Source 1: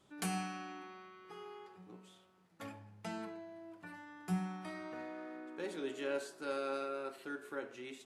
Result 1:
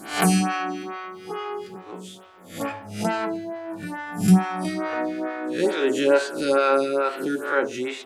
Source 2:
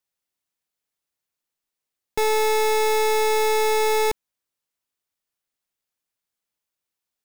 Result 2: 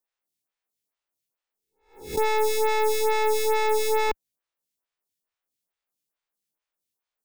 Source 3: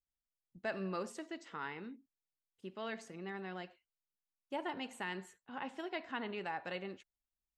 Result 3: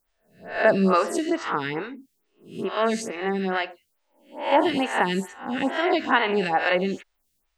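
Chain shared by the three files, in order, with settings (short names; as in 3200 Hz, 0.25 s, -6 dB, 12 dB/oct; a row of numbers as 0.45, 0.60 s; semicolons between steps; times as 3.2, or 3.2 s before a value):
spectral swells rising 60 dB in 0.47 s; photocell phaser 2.3 Hz; match loudness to -24 LUFS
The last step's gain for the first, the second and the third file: +21.0, -0.5, +21.0 dB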